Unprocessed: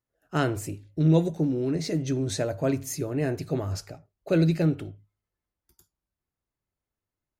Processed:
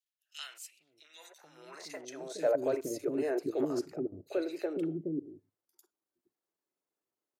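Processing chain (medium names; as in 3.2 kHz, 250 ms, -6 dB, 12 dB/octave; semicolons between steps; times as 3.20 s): level held to a coarse grid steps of 15 dB; three bands offset in time highs, mids, lows 40/460 ms, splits 360/2400 Hz; high-pass sweep 3 kHz -> 350 Hz, 0.75–2.86 s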